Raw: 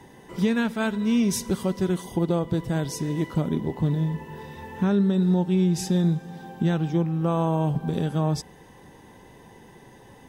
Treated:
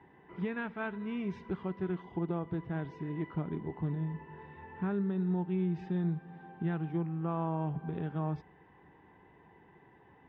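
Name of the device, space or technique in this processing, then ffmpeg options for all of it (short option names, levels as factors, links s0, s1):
bass cabinet: -af "highpass=70,equalizer=f=120:t=q:w=4:g=-7,equalizer=f=230:t=q:w=4:g=-8,equalizer=f=540:t=q:w=4:g=-9,lowpass=f=2400:w=0.5412,lowpass=f=2400:w=1.3066,volume=0.398"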